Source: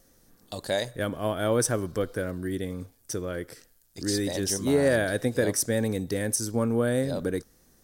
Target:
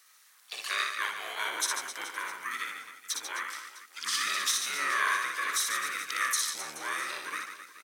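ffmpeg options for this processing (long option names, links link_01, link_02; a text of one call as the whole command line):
ffmpeg -i in.wav -filter_complex "[0:a]alimiter=limit=-19.5dB:level=0:latency=1:release=87,highpass=frequency=2000:width_type=q:width=3.1,asplit=3[link_01][link_02][link_03];[link_02]asetrate=29433,aresample=44100,atempo=1.49831,volume=-1dB[link_04];[link_03]asetrate=55563,aresample=44100,atempo=0.793701,volume=-11dB[link_05];[link_01][link_04][link_05]amix=inputs=3:normalize=0,aeval=exprs='0.2*(cos(1*acos(clip(val(0)/0.2,-1,1)))-cos(1*PI/2))+0.00708*(cos(3*acos(clip(val(0)/0.2,-1,1)))-cos(3*PI/2))':channel_layout=same,aecho=1:1:60|144|261.6|426.2|656.7:0.631|0.398|0.251|0.158|0.1" out.wav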